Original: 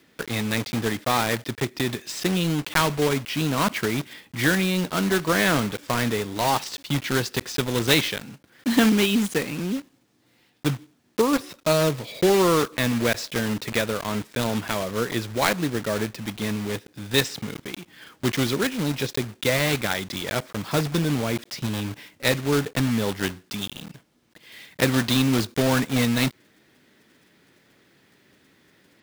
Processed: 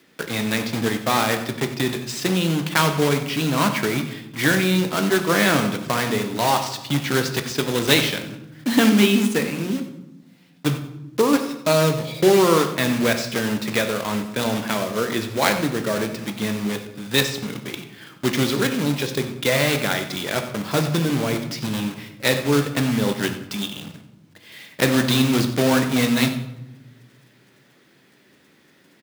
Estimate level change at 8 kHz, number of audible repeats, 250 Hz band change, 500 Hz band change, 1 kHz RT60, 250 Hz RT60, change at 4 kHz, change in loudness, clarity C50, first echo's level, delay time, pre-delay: +2.5 dB, 1, +3.5 dB, +3.5 dB, 0.85 s, 1.7 s, +3.0 dB, +3.0 dB, 9.0 dB, −14.0 dB, 93 ms, 11 ms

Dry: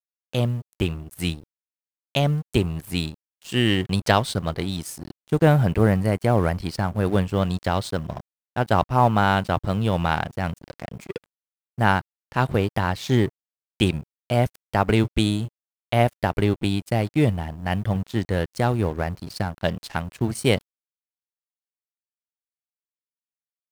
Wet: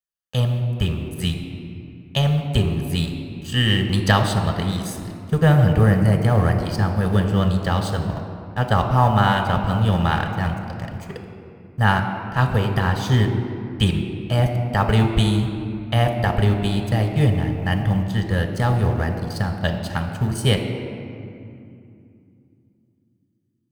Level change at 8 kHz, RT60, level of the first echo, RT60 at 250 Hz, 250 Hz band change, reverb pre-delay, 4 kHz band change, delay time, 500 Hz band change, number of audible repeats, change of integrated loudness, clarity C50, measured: +1.0 dB, 2.6 s, no echo audible, 3.9 s, +2.0 dB, 3 ms, +3.5 dB, no echo audible, −0.5 dB, no echo audible, +3.0 dB, 6.0 dB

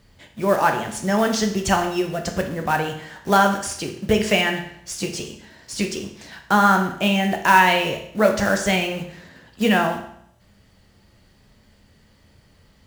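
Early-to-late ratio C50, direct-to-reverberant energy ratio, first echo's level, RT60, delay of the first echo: 8.0 dB, 4.0 dB, no echo audible, 0.70 s, no echo audible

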